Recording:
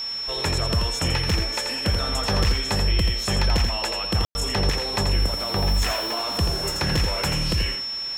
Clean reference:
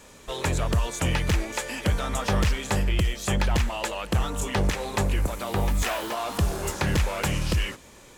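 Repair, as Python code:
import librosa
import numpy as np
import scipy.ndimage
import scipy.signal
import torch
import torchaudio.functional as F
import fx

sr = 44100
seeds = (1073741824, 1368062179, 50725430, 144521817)

y = fx.notch(x, sr, hz=5400.0, q=30.0)
y = fx.fix_ambience(y, sr, seeds[0], print_start_s=7.66, print_end_s=8.16, start_s=4.25, end_s=4.35)
y = fx.noise_reduce(y, sr, print_start_s=7.66, print_end_s=8.16, reduce_db=9.0)
y = fx.fix_echo_inverse(y, sr, delay_ms=84, level_db=-6.5)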